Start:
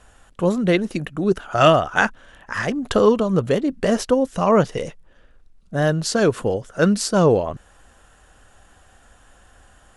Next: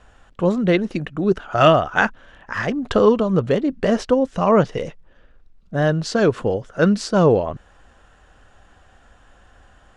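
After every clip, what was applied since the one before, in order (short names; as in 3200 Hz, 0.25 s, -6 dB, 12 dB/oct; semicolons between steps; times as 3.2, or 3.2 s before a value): air absorption 100 m; gain +1 dB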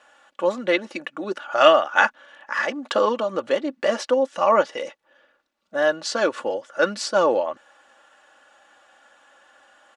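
HPF 550 Hz 12 dB/oct; comb 3.5 ms, depth 63%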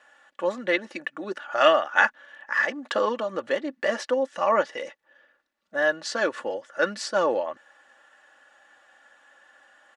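bell 1800 Hz +8.5 dB 0.29 oct; gain -4.5 dB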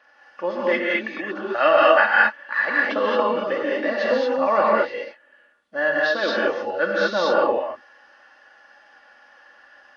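nonlinear frequency compression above 2500 Hz 1.5:1; non-linear reverb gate 0.25 s rising, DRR -4 dB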